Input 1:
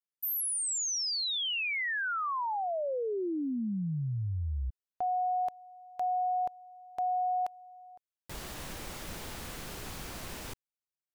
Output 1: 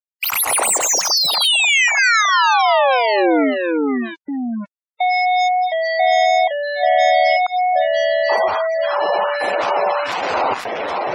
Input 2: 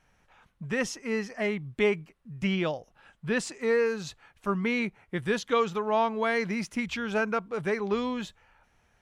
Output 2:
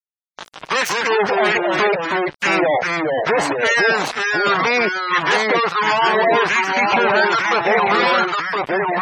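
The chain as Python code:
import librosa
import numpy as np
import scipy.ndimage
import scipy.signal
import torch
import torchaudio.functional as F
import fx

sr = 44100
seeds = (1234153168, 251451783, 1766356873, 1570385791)

y = scipy.ndimage.median_filter(x, 25, mode='constant')
y = fx.dynamic_eq(y, sr, hz=3800.0, q=0.78, threshold_db=-53.0, ratio=3.0, max_db=-4)
y = fx.filter_lfo_highpass(y, sr, shape='sine', hz=1.4, low_hz=730.0, high_hz=1900.0, q=2.0)
y = fx.fuzz(y, sr, gain_db=55.0, gate_db=-57.0)
y = fx.echo_pitch(y, sr, ms=101, semitones=-2, count=2, db_per_echo=-3.0)
y = scipy.signal.sosfilt(scipy.signal.butter(4, 69.0, 'highpass', fs=sr, output='sos'), y)
y = fx.gate_hold(y, sr, open_db=-16.0, close_db=-18.0, hold_ms=55.0, range_db=-29, attack_ms=0.27, release_ms=44.0)
y = fx.peak_eq(y, sr, hz=1200.0, db=-2.0, octaves=0.3)
y = np.where(np.abs(y) >= 10.0 ** (-34.5 / 20.0), y, 0.0)
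y = fx.spec_gate(y, sr, threshold_db=-20, keep='strong')
y = F.gain(torch.from_numpy(y), -1.5).numpy()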